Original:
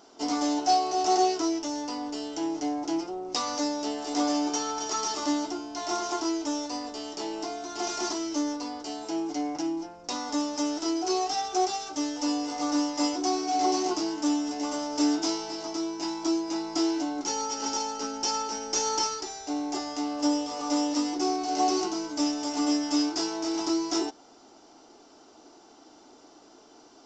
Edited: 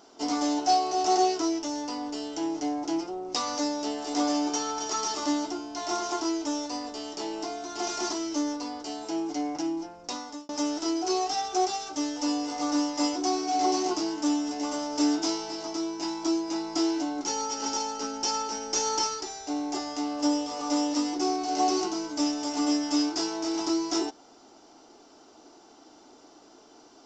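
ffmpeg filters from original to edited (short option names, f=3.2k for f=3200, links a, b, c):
-filter_complex "[0:a]asplit=2[a][b];[a]atrim=end=10.49,asetpts=PTS-STARTPTS,afade=t=out:st=10.03:d=0.46[c];[b]atrim=start=10.49,asetpts=PTS-STARTPTS,afade=t=in:d=0.004:c=hsin[d];[c][d]concat=n=2:v=0:a=1"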